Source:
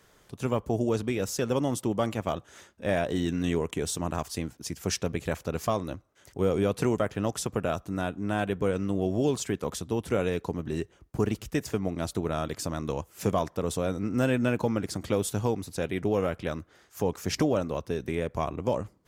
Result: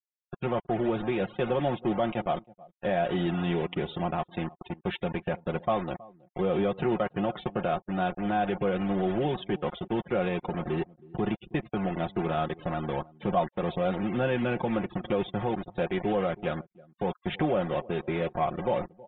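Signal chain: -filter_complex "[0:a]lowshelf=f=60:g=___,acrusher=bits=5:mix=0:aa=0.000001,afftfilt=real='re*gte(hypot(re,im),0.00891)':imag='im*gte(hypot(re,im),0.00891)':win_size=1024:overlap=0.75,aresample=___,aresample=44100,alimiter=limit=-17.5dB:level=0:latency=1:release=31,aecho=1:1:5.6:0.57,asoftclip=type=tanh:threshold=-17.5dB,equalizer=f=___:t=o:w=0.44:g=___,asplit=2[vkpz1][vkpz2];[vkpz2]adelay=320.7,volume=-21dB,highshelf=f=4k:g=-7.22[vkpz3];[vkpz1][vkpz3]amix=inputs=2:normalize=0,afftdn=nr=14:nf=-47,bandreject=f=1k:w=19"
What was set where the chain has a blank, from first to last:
-4.5, 8000, 760, 7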